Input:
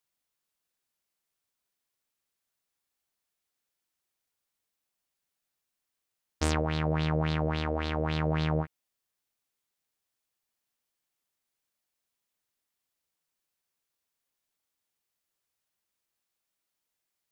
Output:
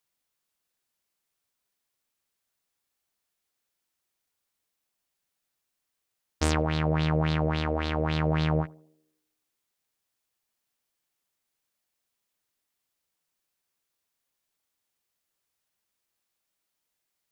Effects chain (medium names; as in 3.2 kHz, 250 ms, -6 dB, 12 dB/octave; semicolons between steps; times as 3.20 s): band-passed feedback delay 84 ms, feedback 57%, band-pass 340 Hz, level -20.5 dB; trim +2.5 dB